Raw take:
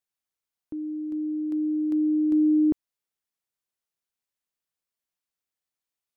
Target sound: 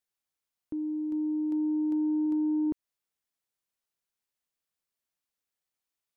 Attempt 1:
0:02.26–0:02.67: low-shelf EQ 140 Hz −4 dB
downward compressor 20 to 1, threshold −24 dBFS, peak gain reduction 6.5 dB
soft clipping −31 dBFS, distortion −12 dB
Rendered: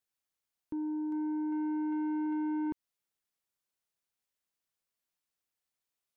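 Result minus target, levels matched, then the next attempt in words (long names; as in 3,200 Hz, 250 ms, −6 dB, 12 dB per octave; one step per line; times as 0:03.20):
soft clipping: distortion +14 dB
0:02.26–0:02.67: low-shelf EQ 140 Hz −4 dB
downward compressor 20 to 1, threshold −24 dBFS, peak gain reduction 6.5 dB
soft clipping −20.5 dBFS, distortion −27 dB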